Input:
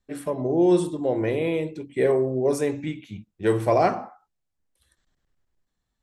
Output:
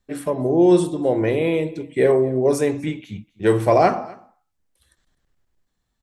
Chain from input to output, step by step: delay 253 ms -22.5 dB; trim +4.5 dB

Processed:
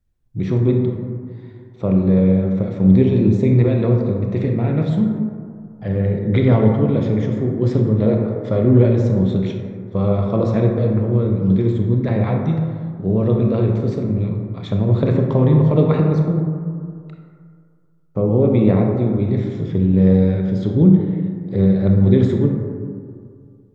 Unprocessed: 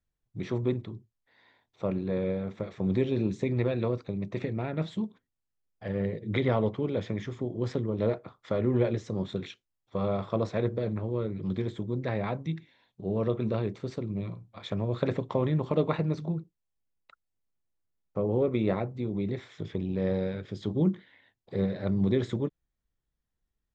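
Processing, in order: bass shelf 380 Hz +11.5 dB; reverberation RT60 2.2 s, pre-delay 23 ms, DRR 1.5 dB; trim +3 dB

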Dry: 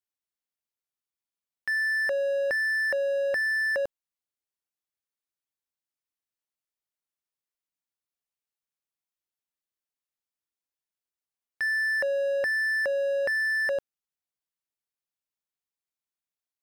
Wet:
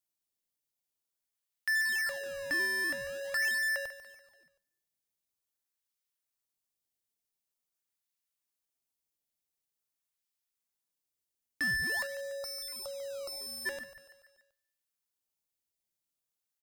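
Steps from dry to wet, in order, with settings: on a send at -17.5 dB: reverberation RT60 1.1 s, pre-delay 3 ms; on the sum: spectral selection erased 12.07–13.66 s, 1.4–3.6 kHz; amplifier tone stack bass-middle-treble 10-0-10; feedback delay 144 ms, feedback 53%, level -13 dB; in parallel at -10.5 dB: decimation with a swept rate 18×, swing 160% 0.46 Hz; on the sum: treble shelf 4.3 kHz +6 dB

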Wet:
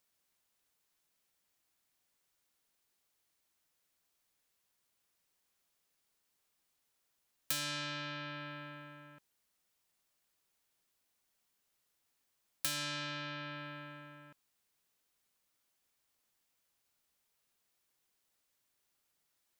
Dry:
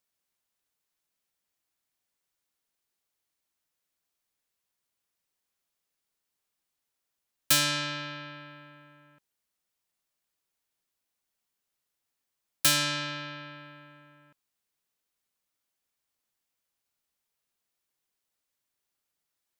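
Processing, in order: compression 3:1, threshold -44 dBFS, peak gain reduction 18.5 dB; trim +3.5 dB

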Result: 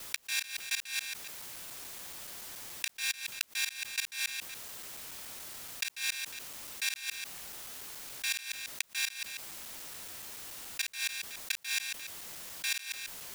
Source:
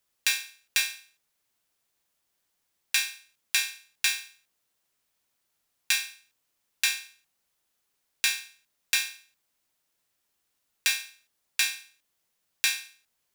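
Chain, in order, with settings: time reversed locally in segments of 142 ms; inverted gate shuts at -15 dBFS, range -26 dB; level flattener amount 70%; trim -2.5 dB

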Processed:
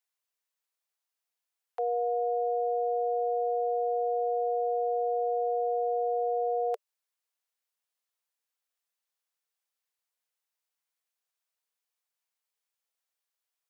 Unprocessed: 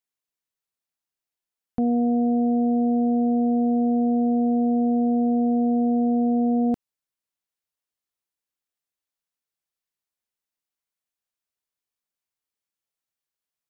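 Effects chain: steep high-pass 440 Hz 96 dB/octave; band-stop 590 Hz; trim +1.5 dB

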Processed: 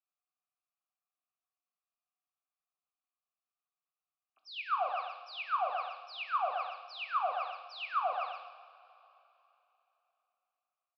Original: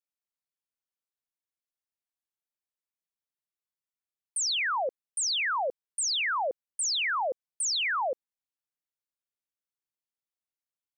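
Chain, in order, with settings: repeats whose band climbs or falls 127 ms, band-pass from 950 Hz, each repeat 0.7 oct, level -6 dB; in parallel at +2.5 dB: peak limiter -29.5 dBFS, peak gain reduction 9 dB; on the sum: peaking EQ 2.3 kHz +4.5 dB 1.3 oct; band-stop 3.2 kHz, Q 14; saturation -24 dBFS, distortion -13 dB; vowel filter a; resampled via 11.025 kHz; graphic EQ with 31 bands 250 Hz +5 dB, 400 Hz -10 dB, 630 Hz -4 dB, 1.25 kHz +9 dB, 2 kHz -9 dB; on a send at -4.5 dB: reverberation, pre-delay 3 ms

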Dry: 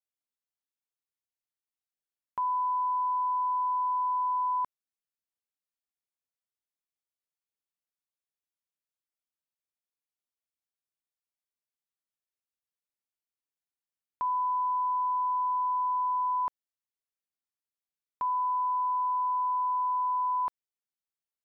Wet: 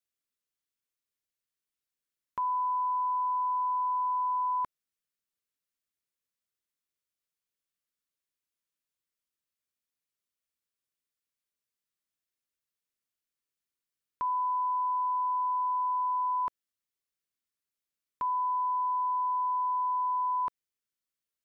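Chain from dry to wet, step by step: peaking EQ 790 Hz -13.5 dB 0.4 oct; trim +3 dB

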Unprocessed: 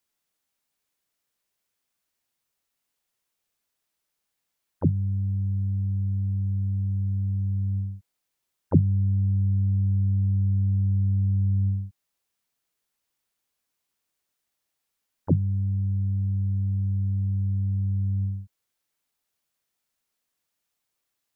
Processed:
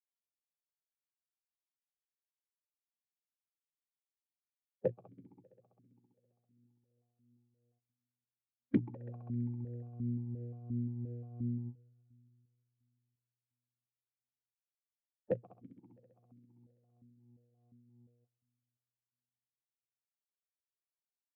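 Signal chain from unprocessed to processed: gate -20 dBFS, range -57 dB; compression 12:1, threshold -32 dBFS, peak gain reduction 19.5 dB; formant-preserving pitch shift +3.5 st; one-sided clip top -35 dBFS; tremolo triangle 2.9 Hz, depth 55%; sine folder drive 5 dB, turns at -27 dBFS; multi-head delay 66 ms, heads second and third, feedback 67%, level -22 dB; stepped vowel filter 5.7 Hz; trim +17.5 dB

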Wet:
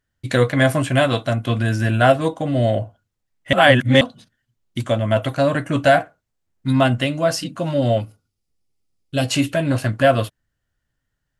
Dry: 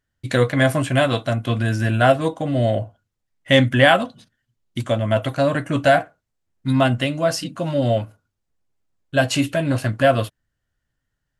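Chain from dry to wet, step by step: 3.53–4.01 s: reverse; 8.00–9.29 s: graphic EQ with 31 bands 630 Hz -8 dB, 1 kHz -9 dB, 1.6 kHz -12 dB, 5 kHz +7 dB, 10 kHz +6 dB; trim +1 dB

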